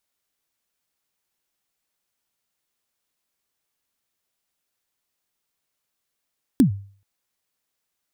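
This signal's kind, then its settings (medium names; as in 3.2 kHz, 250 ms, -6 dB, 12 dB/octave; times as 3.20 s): kick drum length 0.43 s, from 300 Hz, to 99 Hz, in 107 ms, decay 0.45 s, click on, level -8 dB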